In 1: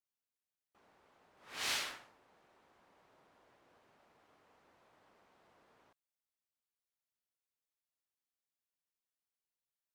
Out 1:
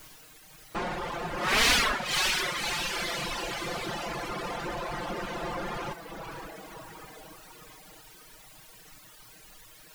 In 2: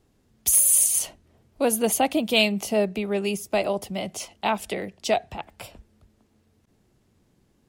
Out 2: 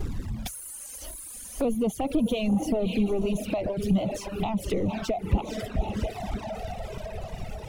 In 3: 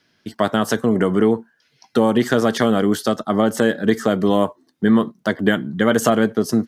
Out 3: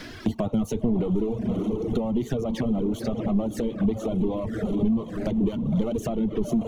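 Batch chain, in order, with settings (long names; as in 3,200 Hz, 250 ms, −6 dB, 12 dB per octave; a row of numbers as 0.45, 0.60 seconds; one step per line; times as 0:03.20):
high-shelf EQ 9,800 Hz +6.5 dB
on a send: feedback delay with all-pass diffusion 544 ms, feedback 43%, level −10 dB
on the sum: power curve on the samples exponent 0.5
downward compressor 5 to 1, threshold −20 dBFS
spectral tilt −3.5 dB per octave
reverb reduction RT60 1.8 s
flanger swept by the level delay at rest 6.5 ms, full sweep at −16.5 dBFS
one half of a high-frequency compander encoder only
normalise the peak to −12 dBFS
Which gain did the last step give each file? +13.5, −6.0, −7.0 decibels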